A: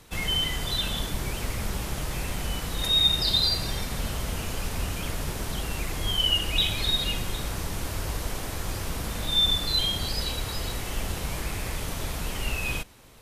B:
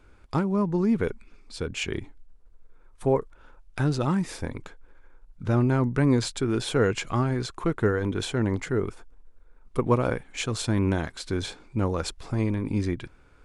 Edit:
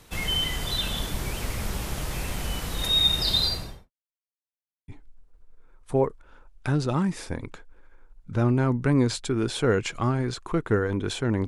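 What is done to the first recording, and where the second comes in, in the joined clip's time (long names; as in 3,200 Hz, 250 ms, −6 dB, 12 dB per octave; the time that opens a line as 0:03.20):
A
0:03.40–0:03.91: fade out and dull
0:03.91–0:04.88: silence
0:04.88: continue with B from 0:02.00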